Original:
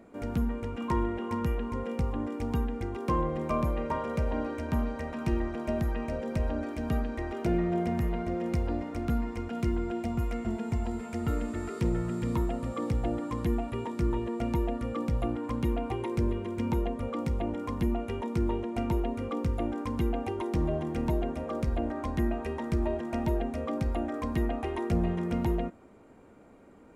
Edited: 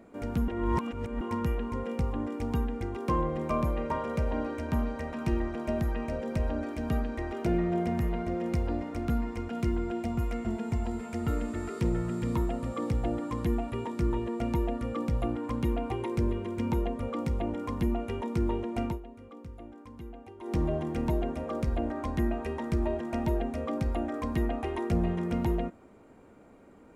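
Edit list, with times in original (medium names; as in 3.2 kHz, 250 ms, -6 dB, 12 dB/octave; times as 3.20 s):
0.48–1.21 s: reverse
18.85–20.54 s: dip -15 dB, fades 0.14 s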